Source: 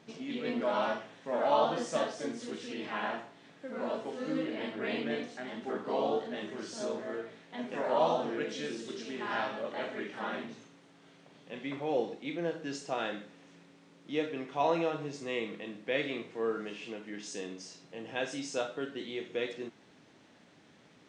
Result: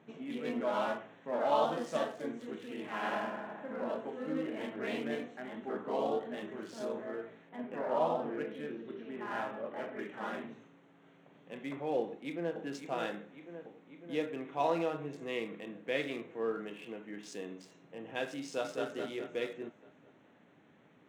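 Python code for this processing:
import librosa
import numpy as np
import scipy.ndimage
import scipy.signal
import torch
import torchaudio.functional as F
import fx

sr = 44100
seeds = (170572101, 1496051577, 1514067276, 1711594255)

y = fx.reverb_throw(x, sr, start_s=2.95, length_s=0.76, rt60_s=2.0, drr_db=-2.0)
y = fx.air_absorb(y, sr, metres=270.0, at=(7.49, 9.99))
y = fx.echo_throw(y, sr, start_s=12.0, length_s=0.56, ms=550, feedback_pct=70, wet_db=-8.0)
y = fx.echo_throw(y, sr, start_s=18.43, length_s=0.42, ms=210, feedback_pct=55, wet_db=-2.5)
y = fx.wiener(y, sr, points=9)
y = scipy.signal.sosfilt(scipy.signal.butter(2, 85.0, 'highpass', fs=sr, output='sos'), y)
y = y * librosa.db_to_amplitude(-2.0)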